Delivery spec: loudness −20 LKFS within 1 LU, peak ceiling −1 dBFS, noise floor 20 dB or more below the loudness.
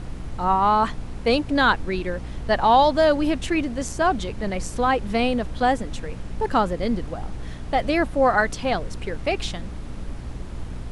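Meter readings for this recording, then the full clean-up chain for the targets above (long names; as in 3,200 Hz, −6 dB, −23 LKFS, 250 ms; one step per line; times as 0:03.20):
mains hum 60 Hz; hum harmonics up to 300 Hz; level of the hum −34 dBFS; background noise floor −34 dBFS; target noise floor −43 dBFS; integrated loudness −22.5 LKFS; sample peak −6.5 dBFS; target loudness −20.0 LKFS
→ mains-hum notches 60/120/180/240/300 Hz
noise reduction from a noise print 9 dB
level +2.5 dB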